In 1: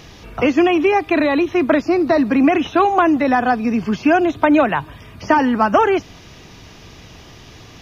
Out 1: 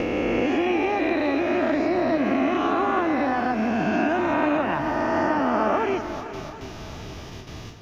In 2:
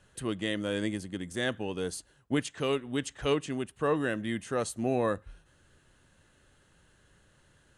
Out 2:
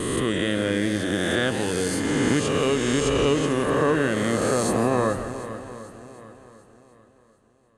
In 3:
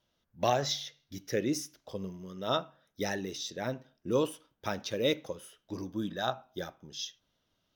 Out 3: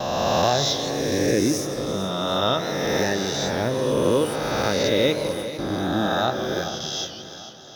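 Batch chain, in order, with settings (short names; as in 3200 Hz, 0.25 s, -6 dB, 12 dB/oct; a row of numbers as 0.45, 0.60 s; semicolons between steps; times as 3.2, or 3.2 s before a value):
spectral swells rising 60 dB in 2.33 s; gate with hold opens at -27 dBFS; low shelf 340 Hz +5 dB; compressor 2.5:1, threshold -21 dBFS; swung echo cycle 0.744 s, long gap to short 1.5:1, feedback 32%, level -13 dB; warbling echo 0.166 s, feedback 45%, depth 168 cents, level -12 dB; match loudness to -23 LUFS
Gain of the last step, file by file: -4.5, +3.5, +5.0 dB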